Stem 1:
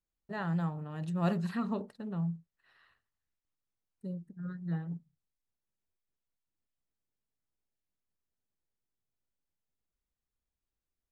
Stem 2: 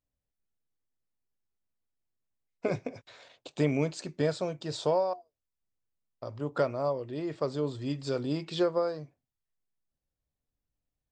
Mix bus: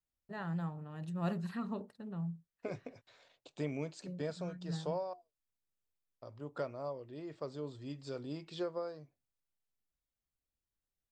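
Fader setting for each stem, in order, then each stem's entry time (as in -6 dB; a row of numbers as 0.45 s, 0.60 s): -5.5 dB, -11.0 dB; 0.00 s, 0.00 s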